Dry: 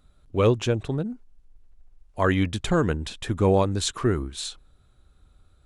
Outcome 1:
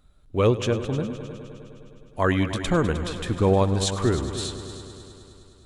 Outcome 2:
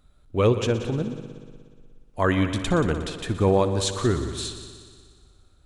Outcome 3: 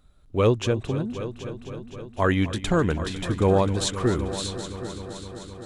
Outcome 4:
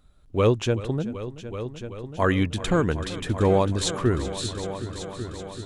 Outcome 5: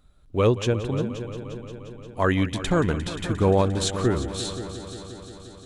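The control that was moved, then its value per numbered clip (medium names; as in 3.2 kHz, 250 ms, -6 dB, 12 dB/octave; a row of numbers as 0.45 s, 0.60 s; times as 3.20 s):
multi-head delay, time: 103 ms, 60 ms, 258 ms, 381 ms, 176 ms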